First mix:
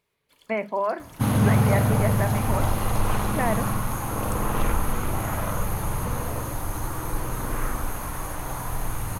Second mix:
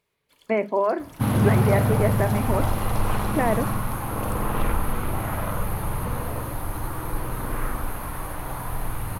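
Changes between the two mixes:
speech: add peaking EQ 350 Hz +9.5 dB 1.2 oct; second sound: add peaking EQ 6.7 kHz -14 dB 0.56 oct

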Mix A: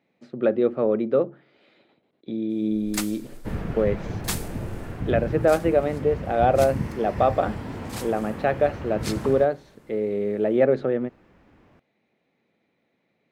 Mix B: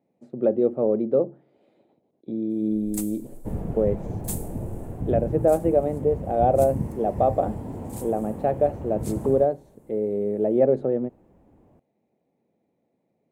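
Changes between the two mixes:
first sound: add peaking EQ 630 Hz -10 dB 2.6 oct; master: add high-order bell 2.6 kHz -15.5 dB 2.6 oct

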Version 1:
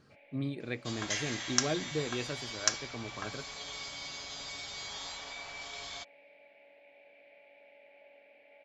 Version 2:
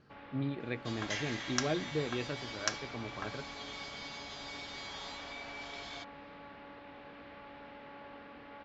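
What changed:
first sound: remove two resonant band-passes 1.2 kHz, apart 1.9 oct; master: add distance through air 130 m

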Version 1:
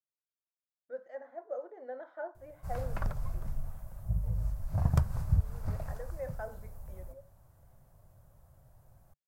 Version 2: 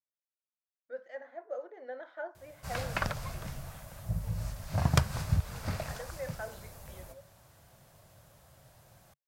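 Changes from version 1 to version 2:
background +7.0 dB; master: add frequency weighting D

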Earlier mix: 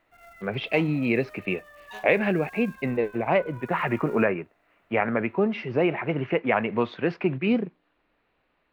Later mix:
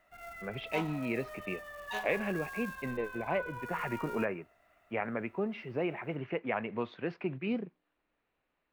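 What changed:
speech -10.5 dB; background +3.5 dB

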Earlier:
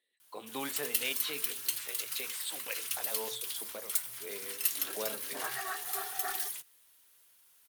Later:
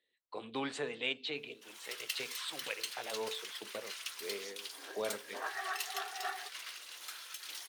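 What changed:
speech: remove high-pass 500 Hz 12 dB/octave; first sound: entry +1.15 s; master: add three-band isolator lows -21 dB, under 340 Hz, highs -19 dB, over 6.7 kHz

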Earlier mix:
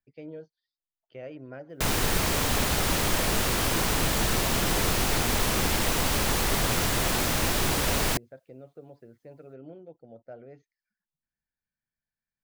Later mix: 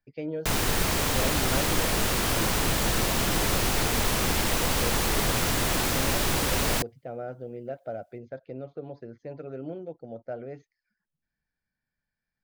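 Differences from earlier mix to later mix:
speech +8.5 dB; background: entry -1.35 s

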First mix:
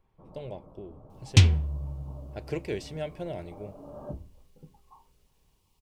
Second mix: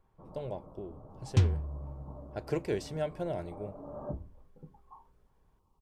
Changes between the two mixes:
speech: add treble shelf 2.3 kHz +10 dB; second sound -7.0 dB; master: add resonant high shelf 1.8 kHz -8.5 dB, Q 1.5

